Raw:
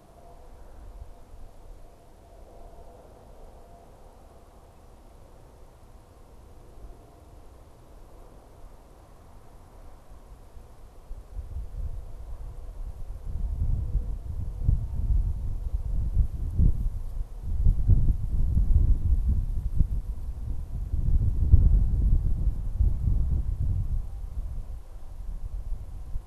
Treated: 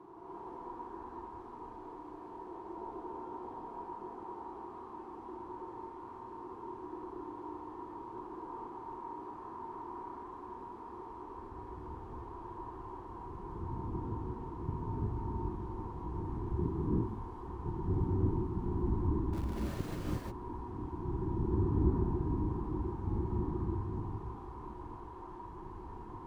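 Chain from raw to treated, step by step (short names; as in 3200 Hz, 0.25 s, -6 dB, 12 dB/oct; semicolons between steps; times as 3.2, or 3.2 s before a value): double band-pass 590 Hz, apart 1.4 oct; 19.33–19.95 sample gate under -53.5 dBFS; non-linear reverb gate 0.38 s rising, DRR -7 dB; gain +11.5 dB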